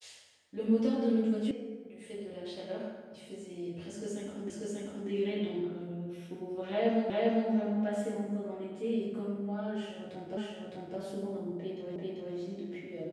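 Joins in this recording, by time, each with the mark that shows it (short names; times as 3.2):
1.51 sound cut off
4.5 repeat of the last 0.59 s
7.1 repeat of the last 0.4 s
10.37 repeat of the last 0.61 s
11.96 repeat of the last 0.39 s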